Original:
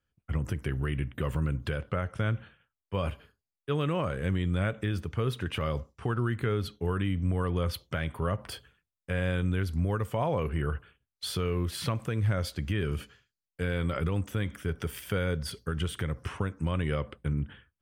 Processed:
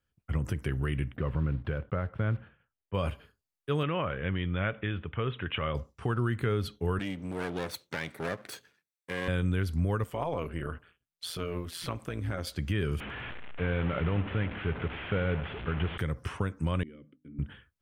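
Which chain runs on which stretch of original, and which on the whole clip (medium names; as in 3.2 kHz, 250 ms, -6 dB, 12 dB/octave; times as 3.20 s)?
1.16–2.94 s: block-companded coder 5-bit + distance through air 480 m
3.83–5.75 s: steep low-pass 3.4 kHz 72 dB/octave + tilt shelf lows -3.5 dB, about 810 Hz
6.99–9.28 s: comb filter that takes the minimum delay 0.51 ms + high-pass 240 Hz
10.04–12.47 s: bass shelf 150 Hz -6.5 dB + AM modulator 170 Hz, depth 55%
13.00–15.98 s: one-bit delta coder 16 kbps, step -33 dBFS + feedback delay 101 ms, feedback 58%, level -16 dB
16.83–17.39 s: vowel filter i + high-order bell 3.6 kHz -14 dB 2.3 oct + hum notches 50/100/150/200/250/300 Hz
whole clip: none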